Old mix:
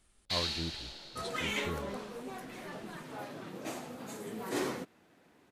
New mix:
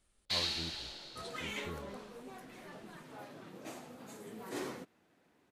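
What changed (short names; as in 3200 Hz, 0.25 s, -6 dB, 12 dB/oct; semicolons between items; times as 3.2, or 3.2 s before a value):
speech -6.0 dB; second sound -6.5 dB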